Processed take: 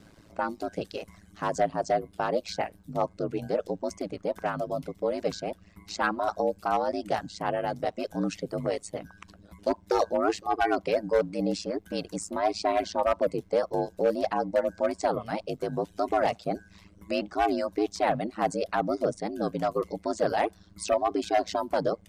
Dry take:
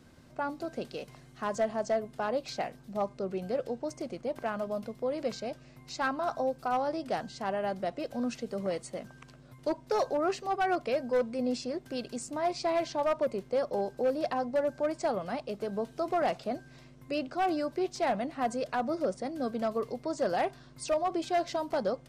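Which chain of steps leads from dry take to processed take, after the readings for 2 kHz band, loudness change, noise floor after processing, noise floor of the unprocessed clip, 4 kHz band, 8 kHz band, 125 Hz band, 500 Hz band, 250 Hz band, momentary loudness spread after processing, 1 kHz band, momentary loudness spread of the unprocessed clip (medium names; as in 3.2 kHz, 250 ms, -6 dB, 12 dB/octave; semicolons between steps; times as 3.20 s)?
+3.5 dB, +3.5 dB, -58 dBFS, -55 dBFS, +3.5 dB, +3.5 dB, +7.0 dB, +3.0 dB, +2.5 dB, 8 LU, +4.0 dB, 8 LU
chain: reverb removal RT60 0.77 s; ring modulator 54 Hz; trim +7 dB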